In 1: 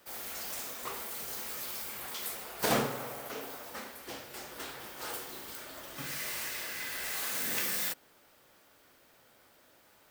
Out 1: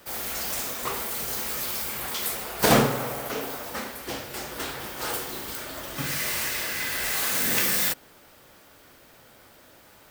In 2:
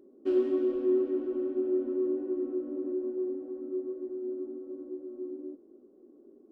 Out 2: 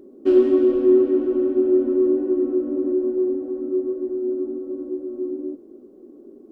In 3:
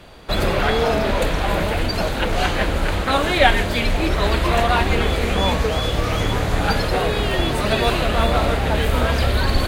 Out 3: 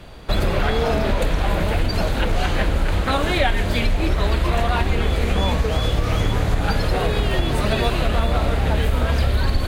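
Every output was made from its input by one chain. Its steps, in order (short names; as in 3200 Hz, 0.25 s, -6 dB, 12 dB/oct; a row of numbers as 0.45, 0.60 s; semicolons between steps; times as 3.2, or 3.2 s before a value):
low shelf 170 Hz +7 dB; compressor 4:1, threshold -15 dBFS; normalise peaks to -6 dBFS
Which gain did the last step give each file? +9.0, +10.0, 0.0 dB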